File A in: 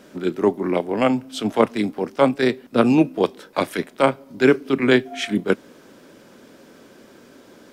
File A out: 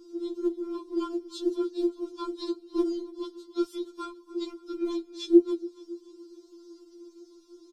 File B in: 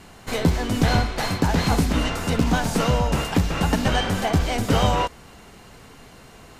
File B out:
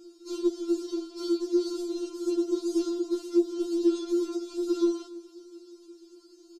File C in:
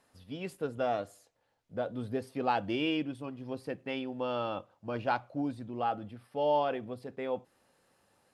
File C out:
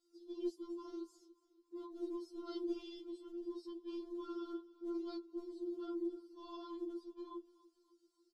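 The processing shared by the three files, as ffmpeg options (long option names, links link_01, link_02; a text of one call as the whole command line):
ffmpeg -i in.wav -filter_complex "[0:a]afftfilt=real='real(if(between(b,1,1008),(2*floor((b-1)/24)+1)*24-b,b),0)':imag='imag(if(between(b,1,1008),(2*floor((b-1)/24)+1)*24-b,b),0)*if(between(b,1,1008),-1,1)':win_size=2048:overlap=0.75,highpass=frequency=200:poles=1,asplit=2[link_01][link_02];[link_02]acontrast=55,volume=0.5dB[link_03];[link_01][link_03]amix=inputs=2:normalize=0,firequalizer=gain_entry='entry(290,0);entry(440,0);entry(820,-27);entry(1400,3);entry(2100,-29);entry(3100,-15);entry(4600,-2);entry(9400,-10)':delay=0.05:min_phase=1,alimiter=limit=-5dB:level=0:latency=1:release=289,acrossover=split=260[link_04][link_05];[link_04]acompressor=threshold=-32dB:ratio=4[link_06];[link_06][link_05]amix=inputs=2:normalize=0,asplit=3[link_07][link_08][link_09];[link_07]bandpass=frequency=300:width_type=q:width=8,volume=0dB[link_10];[link_08]bandpass=frequency=870:width_type=q:width=8,volume=-6dB[link_11];[link_09]bandpass=frequency=2240:width_type=q:width=8,volume=-9dB[link_12];[link_10][link_11][link_12]amix=inputs=3:normalize=0,afftfilt=real='hypot(re,im)*cos(2*PI*random(0))':imag='hypot(re,im)*sin(2*PI*random(1))':win_size=512:overlap=0.75,aexciter=amount=9.9:drive=4.3:freq=3300,adynamicequalizer=threshold=0.00126:dfrequency=5000:dqfactor=2.3:tfrequency=5000:tqfactor=2.3:attack=5:release=100:ratio=0.375:range=2:mode=cutabove:tftype=bell,aecho=1:1:285|570|855|1140:0.1|0.048|0.023|0.0111,afftfilt=real='re*4*eq(mod(b,16),0)':imag='im*4*eq(mod(b,16),0)':win_size=2048:overlap=0.75,volume=5dB" out.wav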